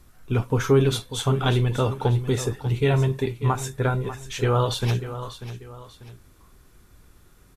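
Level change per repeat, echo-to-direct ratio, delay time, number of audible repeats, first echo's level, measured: -8.5 dB, -12.0 dB, 0.592 s, 2, -12.5 dB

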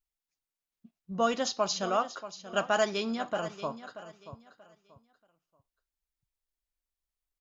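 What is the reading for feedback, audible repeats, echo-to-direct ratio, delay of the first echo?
26%, 2, -13.0 dB, 0.633 s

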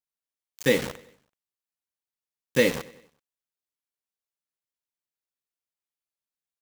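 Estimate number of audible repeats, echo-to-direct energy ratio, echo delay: 3, -19.0 dB, 95 ms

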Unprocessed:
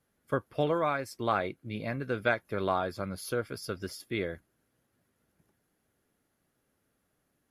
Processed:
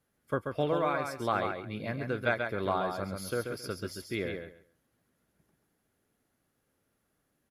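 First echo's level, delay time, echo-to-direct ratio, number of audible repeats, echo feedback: -5.5 dB, 0.135 s, -5.5 dB, 3, 20%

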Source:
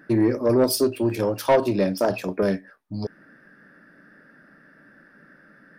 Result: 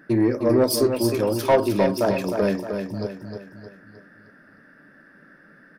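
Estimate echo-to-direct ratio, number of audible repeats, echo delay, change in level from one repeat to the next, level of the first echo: -5.5 dB, 5, 0.309 s, -7.0 dB, -6.5 dB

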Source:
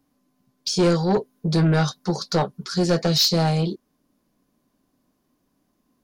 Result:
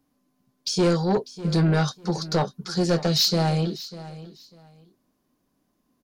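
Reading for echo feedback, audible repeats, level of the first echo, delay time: 22%, 2, -16.5 dB, 0.597 s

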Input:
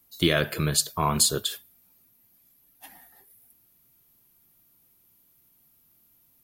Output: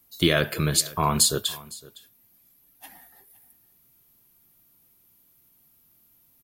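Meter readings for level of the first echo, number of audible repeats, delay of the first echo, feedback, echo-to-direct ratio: -21.0 dB, 1, 0.51 s, no steady repeat, -21.0 dB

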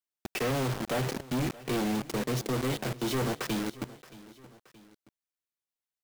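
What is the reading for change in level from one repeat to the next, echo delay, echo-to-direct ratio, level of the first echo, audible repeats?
-6.0 dB, 0.624 s, -18.0 dB, -19.0 dB, 2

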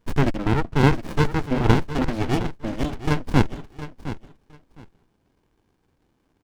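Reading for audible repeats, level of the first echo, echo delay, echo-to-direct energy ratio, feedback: 2, -13.0 dB, 0.712 s, -13.0 dB, 18%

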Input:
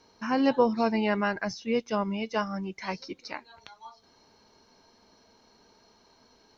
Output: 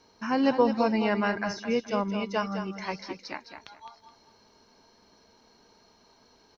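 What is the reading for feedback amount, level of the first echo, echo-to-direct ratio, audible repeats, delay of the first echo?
26%, -9.0 dB, -8.5 dB, 3, 0.211 s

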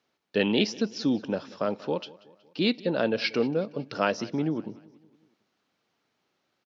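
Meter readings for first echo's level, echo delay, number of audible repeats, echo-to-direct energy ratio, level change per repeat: -21.0 dB, 0.185 s, 3, -19.5 dB, -6.0 dB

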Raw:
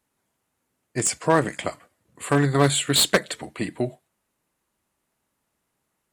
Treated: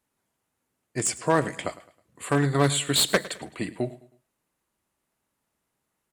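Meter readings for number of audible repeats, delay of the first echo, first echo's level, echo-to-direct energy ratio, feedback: 2, 0.106 s, -18.0 dB, -17.5 dB, 37%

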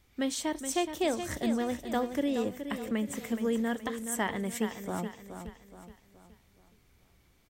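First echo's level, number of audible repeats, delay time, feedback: -9.0 dB, 4, 0.422 s, 43%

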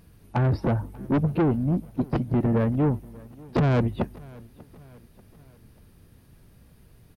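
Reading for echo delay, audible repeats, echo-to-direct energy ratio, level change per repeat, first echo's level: 0.589 s, 3, -22.0 dB, -6.0 dB, -23.0 dB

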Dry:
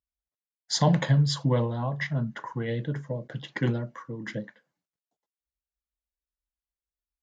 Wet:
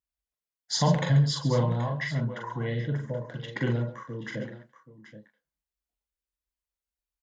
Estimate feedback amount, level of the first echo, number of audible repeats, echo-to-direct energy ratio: no steady repeat, -4.0 dB, 3, -3.0 dB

